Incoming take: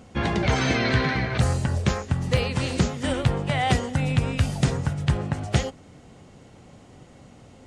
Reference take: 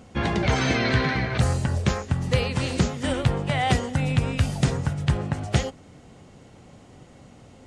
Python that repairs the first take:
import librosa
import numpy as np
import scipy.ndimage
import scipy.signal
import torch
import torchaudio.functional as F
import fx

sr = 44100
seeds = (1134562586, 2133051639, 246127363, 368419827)

y = fx.fix_interpolate(x, sr, at_s=(2.37,), length_ms=2.5)